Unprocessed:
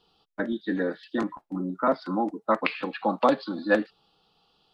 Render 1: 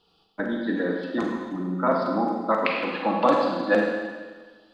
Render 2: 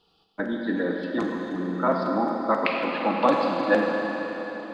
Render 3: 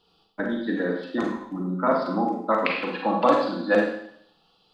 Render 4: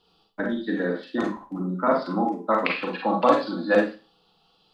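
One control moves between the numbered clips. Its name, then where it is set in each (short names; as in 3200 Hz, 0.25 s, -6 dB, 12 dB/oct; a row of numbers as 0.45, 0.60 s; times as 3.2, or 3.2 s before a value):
Schroeder reverb, RT60: 1.5, 4.5, 0.68, 0.31 s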